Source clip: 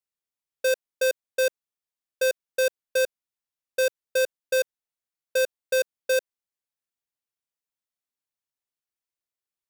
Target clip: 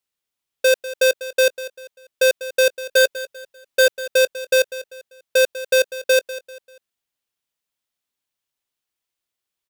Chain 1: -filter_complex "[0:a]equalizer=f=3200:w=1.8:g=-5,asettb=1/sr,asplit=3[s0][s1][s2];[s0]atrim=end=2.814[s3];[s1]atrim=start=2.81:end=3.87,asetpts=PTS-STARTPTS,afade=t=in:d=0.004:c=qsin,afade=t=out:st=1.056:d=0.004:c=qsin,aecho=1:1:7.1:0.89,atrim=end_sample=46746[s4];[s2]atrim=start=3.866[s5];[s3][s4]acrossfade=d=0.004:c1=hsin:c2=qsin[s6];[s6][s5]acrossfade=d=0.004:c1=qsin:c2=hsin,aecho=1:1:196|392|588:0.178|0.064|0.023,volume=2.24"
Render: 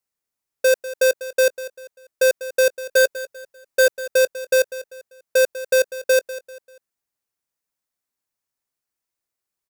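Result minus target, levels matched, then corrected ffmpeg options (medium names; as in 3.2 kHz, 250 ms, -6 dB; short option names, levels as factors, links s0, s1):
4 kHz band -4.5 dB
-filter_complex "[0:a]equalizer=f=3200:w=1.8:g=4,asettb=1/sr,asplit=3[s0][s1][s2];[s0]atrim=end=2.814[s3];[s1]atrim=start=2.81:end=3.87,asetpts=PTS-STARTPTS,afade=t=in:d=0.004:c=qsin,afade=t=out:st=1.056:d=0.004:c=qsin,aecho=1:1:7.1:0.89,atrim=end_sample=46746[s4];[s2]atrim=start=3.866[s5];[s3][s4]acrossfade=d=0.004:c1=hsin:c2=qsin[s6];[s6][s5]acrossfade=d=0.004:c1=qsin:c2=hsin,aecho=1:1:196|392|588:0.178|0.064|0.023,volume=2.24"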